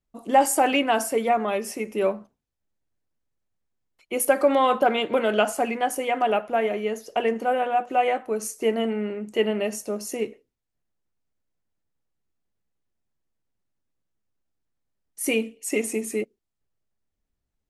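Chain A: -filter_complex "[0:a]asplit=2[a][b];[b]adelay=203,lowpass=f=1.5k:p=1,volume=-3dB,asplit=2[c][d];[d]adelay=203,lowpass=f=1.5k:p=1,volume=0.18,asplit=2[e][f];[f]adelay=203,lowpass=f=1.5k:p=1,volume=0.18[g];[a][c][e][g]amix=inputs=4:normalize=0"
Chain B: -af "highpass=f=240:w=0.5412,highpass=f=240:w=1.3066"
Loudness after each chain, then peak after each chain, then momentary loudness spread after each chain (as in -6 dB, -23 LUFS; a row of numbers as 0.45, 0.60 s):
-23.0, -24.5 LUFS; -5.0, -7.0 dBFS; 10, 11 LU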